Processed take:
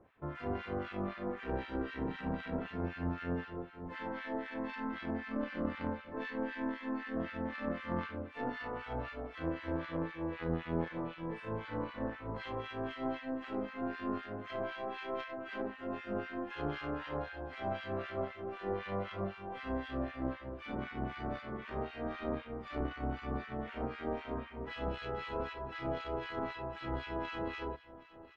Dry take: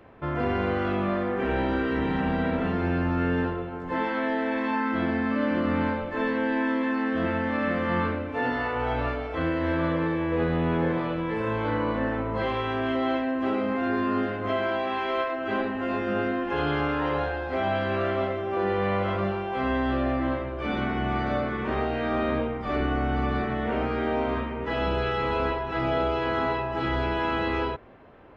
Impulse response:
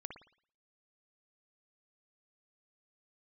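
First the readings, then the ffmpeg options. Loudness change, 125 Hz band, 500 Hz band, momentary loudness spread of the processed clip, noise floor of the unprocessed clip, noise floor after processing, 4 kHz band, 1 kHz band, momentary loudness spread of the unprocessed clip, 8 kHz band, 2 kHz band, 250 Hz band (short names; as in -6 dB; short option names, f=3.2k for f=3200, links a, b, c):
-12.5 dB, -12.0 dB, -12.5 dB, 4 LU, -33 dBFS, -51 dBFS, -12.0 dB, -13.5 dB, 3 LU, n/a, -13.5 dB, -12.5 dB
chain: -filter_complex "[0:a]aeval=exprs='0.224*(cos(1*acos(clip(val(0)/0.224,-1,1)))-cos(1*PI/2))+0.0282*(cos(2*acos(clip(val(0)/0.224,-1,1)))-cos(2*PI/2))+0.0282*(cos(3*acos(clip(val(0)/0.224,-1,1)))-cos(3*PI/2))':c=same,aecho=1:1:773|1546|2319|3092|3865:0.112|0.0628|0.0352|0.0197|0.011,acrossover=split=1300[a][b];[a]aeval=exprs='val(0)*(1-1/2+1/2*cos(2*PI*3.9*n/s))':c=same[c];[b]aeval=exprs='val(0)*(1-1/2-1/2*cos(2*PI*3.9*n/s))':c=same[d];[c][d]amix=inputs=2:normalize=0,volume=-5dB"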